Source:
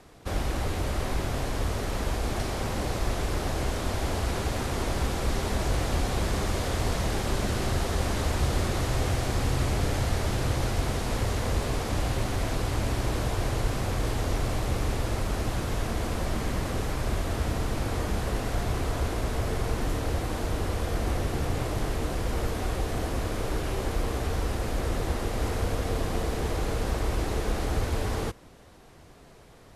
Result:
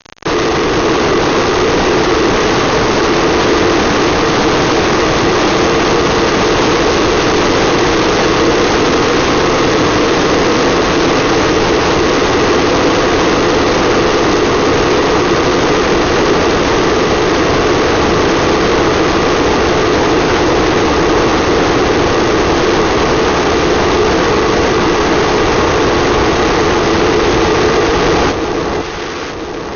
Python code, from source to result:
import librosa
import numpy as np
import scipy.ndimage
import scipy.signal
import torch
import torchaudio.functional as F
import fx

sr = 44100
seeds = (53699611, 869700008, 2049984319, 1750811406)

y = fx.peak_eq(x, sr, hz=1300.0, db=3.0, octaves=2.2)
y = y * np.sin(2.0 * np.pi * 390.0 * np.arange(len(y)) / sr)
y = fx.fuzz(y, sr, gain_db=51.0, gate_db=-46.0)
y = fx.brickwall_lowpass(y, sr, high_hz=6600.0)
y = fx.echo_alternate(y, sr, ms=498, hz=1200.0, feedback_pct=70, wet_db=-4.0)
y = F.gain(torch.from_numpy(y), 2.5).numpy()